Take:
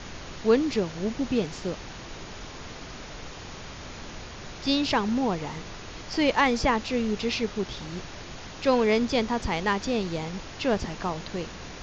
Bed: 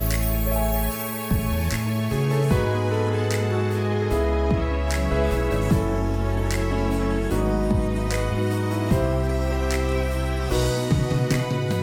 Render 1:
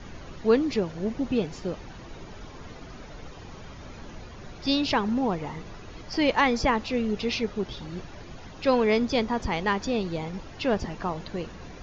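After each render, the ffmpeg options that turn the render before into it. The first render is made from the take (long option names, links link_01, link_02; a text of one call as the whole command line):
ffmpeg -i in.wav -af "afftdn=noise_reduction=10:noise_floor=-41" out.wav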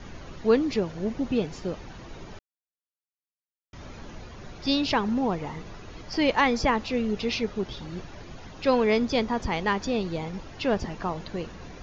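ffmpeg -i in.wav -filter_complex "[0:a]asplit=3[link_01][link_02][link_03];[link_01]atrim=end=2.39,asetpts=PTS-STARTPTS,afade=type=out:start_time=2.386:duration=0.004:curve=hsin[link_04];[link_02]atrim=start=2.39:end=3.73,asetpts=PTS-STARTPTS,volume=0[link_05];[link_03]atrim=start=3.73,asetpts=PTS-STARTPTS,afade=type=in:duration=0.004:curve=hsin[link_06];[link_04][link_05][link_06]concat=n=3:v=0:a=1" out.wav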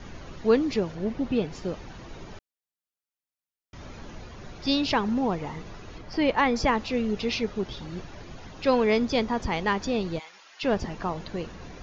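ffmpeg -i in.wav -filter_complex "[0:a]asettb=1/sr,asplit=3[link_01][link_02][link_03];[link_01]atrim=end=0.954[link_04];[link_02]atrim=start=0.95:end=1.55,asetpts=PTS-STARTPTS,afade=type=in:duration=0.004:curve=qsin,afade=type=out:start_time=0.596:duration=0.004:curve=qsin,lowpass=5200[link_05];[link_03]atrim=start=1.546[link_06];[link_04][link_05]acrossfade=duration=0.004:curve1=hsin:curve2=qsin[link_07];[link_07][link_06]acrossfade=duration=0.004:curve1=qsin:curve2=hsin,asettb=1/sr,asplit=3[link_08][link_09][link_10];[link_08]atrim=end=5.984[link_11];[link_09]atrim=start=5.98:end=6.56,asetpts=PTS-STARTPTS,afade=type=in:duration=0.004:curve=qsin,afade=type=out:start_time=0.576:duration=0.004:curve=qsin,lowpass=frequency=2600:poles=1[link_12];[link_10]atrim=start=6.556[link_13];[link_11][link_12]acrossfade=duration=0.004:curve1=hsin:curve2=qsin[link_14];[link_14][link_13]acrossfade=duration=0.004:curve1=qsin:curve2=hsin,asplit=3[link_15][link_16][link_17];[link_15]afade=type=out:start_time=10.18:duration=0.02[link_18];[link_16]highpass=1400,afade=type=in:start_time=10.18:duration=0.02,afade=type=out:start_time=10.62:duration=0.02[link_19];[link_17]afade=type=in:start_time=10.62:duration=0.02[link_20];[link_18][link_19][link_20]amix=inputs=3:normalize=0" out.wav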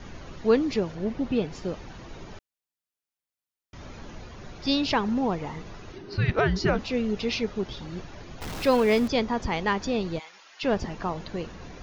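ffmpeg -i in.wav -filter_complex "[0:a]asettb=1/sr,asplit=3[link_01][link_02][link_03];[link_01]atrim=end=5.924[link_04];[link_02]atrim=start=5.92:end=6.79,asetpts=PTS-STARTPTS,afade=type=in:duration=0.004:curve=qsin,afade=type=out:start_time=0.866:duration=0.004:curve=qsin,afreqshift=-420[link_05];[link_03]atrim=start=6.786[link_06];[link_04][link_05]acrossfade=duration=0.004:curve1=hsin:curve2=qsin[link_07];[link_07][link_06]acrossfade=duration=0.004:curve1=qsin:curve2=hsin,asettb=1/sr,asplit=3[link_08][link_09][link_10];[link_08]atrim=end=8.414[link_11];[link_09]atrim=start=8.41:end=9.08,asetpts=PTS-STARTPTS,afade=type=in:duration=0.004:curve=qsin,afade=type=out:start_time=0.666:duration=0.004:curve=qsin,aeval=exprs='val(0)+0.5*0.0266*sgn(val(0))':channel_layout=same[link_12];[link_10]atrim=start=9.076[link_13];[link_11][link_12]acrossfade=duration=0.004:curve1=hsin:curve2=qsin[link_14];[link_14][link_13]acrossfade=duration=0.004:curve1=qsin:curve2=hsin" out.wav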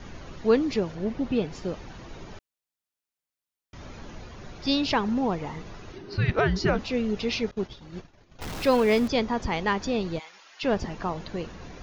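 ffmpeg -i in.wav -filter_complex "[0:a]asettb=1/sr,asplit=3[link_01][link_02][link_03];[link_01]atrim=end=7.514[link_04];[link_02]atrim=start=7.51:end=8.39,asetpts=PTS-STARTPTS,afade=type=in:duration=0.004:curve=qsin,afade=type=out:start_time=0.876:duration=0.004:curve=qsin,agate=range=-33dB:threshold=-32dB:ratio=3:release=100:detection=peak[link_05];[link_03]atrim=start=8.386[link_06];[link_04][link_05]acrossfade=duration=0.004:curve1=hsin:curve2=qsin[link_07];[link_07][link_06]acrossfade=duration=0.004:curve1=qsin:curve2=hsin" out.wav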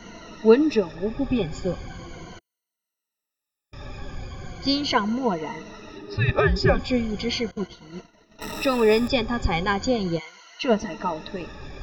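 ffmpeg -i in.wav -af "afftfilt=real='re*pow(10,18/40*sin(2*PI*(1.9*log(max(b,1)*sr/1024/100)/log(2)-(-0.38)*(pts-256)/sr)))':imag='im*pow(10,18/40*sin(2*PI*(1.9*log(max(b,1)*sr/1024/100)/log(2)-(-0.38)*(pts-256)/sr)))':win_size=1024:overlap=0.75" out.wav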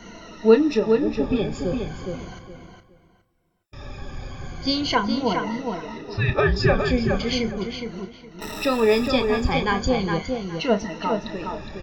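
ffmpeg -i in.wav -filter_complex "[0:a]asplit=2[link_01][link_02];[link_02]adelay=31,volume=-10.5dB[link_03];[link_01][link_03]amix=inputs=2:normalize=0,asplit=2[link_04][link_05];[link_05]adelay=414,lowpass=frequency=3500:poles=1,volume=-5dB,asplit=2[link_06][link_07];[link_07]adelay=414,lowpass=frequency=3500:poles=1,volume=0.23,asplit=2[link_08][link_09];[link_09]adelay=414,lowpass=frequency=3500:poles=1,volume=0.23[link_10];[link_04][link_06][link_08][link_10]amix=inputs=4:normalize=0" out.wav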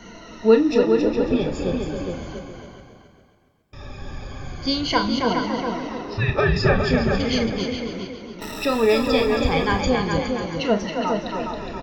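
ffmpeg -i in.wav -filter_complex "[0:a]asplit=2[link_01][link_02];[link_02]adelay=44,volume=-13dB[link_03];[link_01][link_03]amix=inputs=2:normalize=0,asplit=5[link_04][link_05][link_06][link_07][link_08];[link_05]adelay=273,afreqshift=31,volume=-6dB[link_09];[link_06]adelay=546,afreqshift=62,volume=-15.4dB[link_10];[link_07]adelay=819,afreqshift=93,volume=-24.7dB[link_11];[link_08]adelay=1092,afreqshift=124,volume=-34.1dB[link_12];[link_04][link_09][link_10][link_11][link_12]amix=inputs=5:normalize=0" out.wav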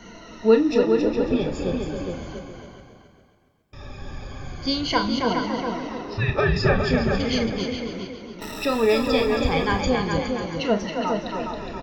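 ffmpeg -i in.wav -af "volume=-1.5dB" out.wav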